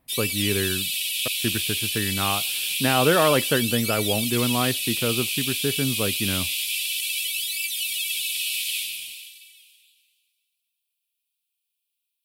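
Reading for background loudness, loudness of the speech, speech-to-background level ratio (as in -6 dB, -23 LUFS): -24.5 LUFS, -25.5 LUFS, -1.0 dB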